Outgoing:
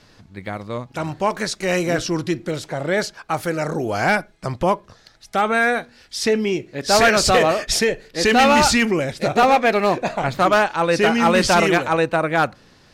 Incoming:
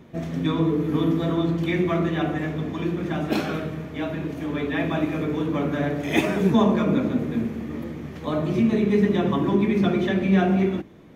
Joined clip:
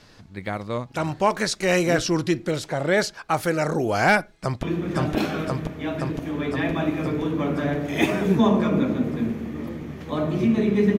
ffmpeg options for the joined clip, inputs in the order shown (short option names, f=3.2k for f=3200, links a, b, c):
-filter_complex "[0:a]apad=whole_dur=10.98,atrim=end=10.98,atrim=end=4.632[a];[1:a]atrim=start=2.778:end=9.13[b];[a][b]acrossfade=d=0.004:c1=hsin:c2=hsin,asplit=2[c][d];[d]afade=t=in:st=4.3:d=0.01,afade=t=out:st=4.63:d=0.01,aecho=0:1:520|1040|1560|2080|2600|3120|3640|4160|4680|5200|5720|6240:1|0.75|0.5625|0.421875|0.316406|0.237305|0.177979|0.133484|0.100113|0.0750847|0.0563135|0.0422351[e];[c][e]amix=inputs=2:normalize=0"